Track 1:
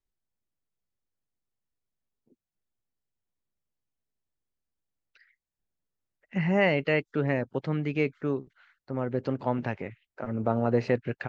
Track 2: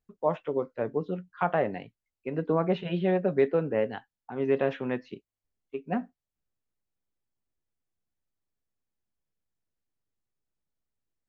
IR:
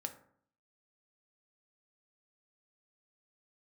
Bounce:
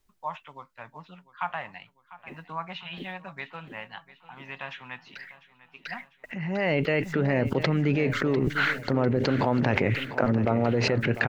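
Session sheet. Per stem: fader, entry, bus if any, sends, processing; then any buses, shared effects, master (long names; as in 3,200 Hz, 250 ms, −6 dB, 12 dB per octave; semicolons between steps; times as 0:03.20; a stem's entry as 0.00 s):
−3.5 dB, 0.00 s, no send, echo send −13.5 dB, noise gate with hold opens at −56 dBFS; envelope flattener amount 100%; automatic ducking −18 dB, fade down 1.40 s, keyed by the second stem
−11.0 dB, 0.00 s, no send, echo send −17 dB, drawn EQ curve 150 Hz 0 dB, 430 Hz −17 dB, 940 Hz +12 dB, 1,500 Hz +9 dB, 2,600 Hz +15 dB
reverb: not used
echo: repeating echo 698 ms, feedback 52%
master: no processing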